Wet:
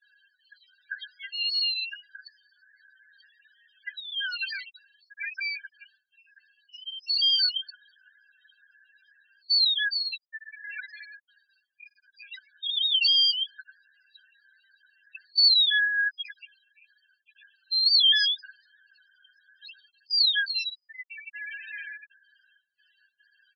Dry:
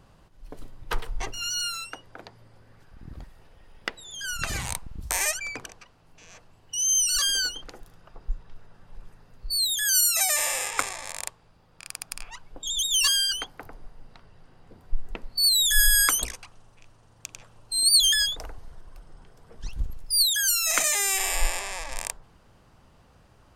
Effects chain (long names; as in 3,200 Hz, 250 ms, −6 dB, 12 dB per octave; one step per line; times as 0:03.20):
compressor on every frequency bin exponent 0.6
noise gate with hold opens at −29 dBFS
Chebyshev high-pass filter 1,500 Hz, order 5
leveller curve on the samples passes 1
spectral peaks only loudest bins 4
downsampling to 11,025 Hz
one half of a high-frequency compander decoder only